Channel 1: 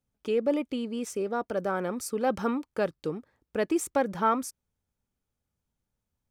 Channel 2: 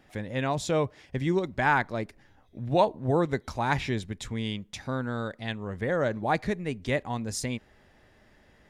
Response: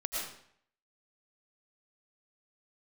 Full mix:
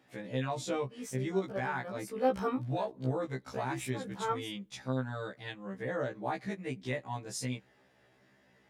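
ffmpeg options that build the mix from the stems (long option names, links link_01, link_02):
-filter_complex "[0:a]dynaudnorm=framelen=340:gausssize=5:maxgain=11.5dB,volume=-12.5dB[link_01];[1:a]highpass=frequency=98:width=0.5412,highpass=frequency=98:width=1.3066,alimiter=limit=-18.5dB:level=0:latency=1:release=276,volume=-3dB,asplit=2[link_02][link_03];[link_03]apad=whole_len=278213[link_04];[link_01][link_04]sidechaincompress=threshold=-43dB:ratio=8:attack=40:release=197[link_05];[link_05][link_02]amix=inputs=2:normalize=0,afftfilt=real='re*1.73*eq(mod(b,3),0)':imag='im*1.73*eq(mod(b,3),0)':win_size=2048:overlap=0.75"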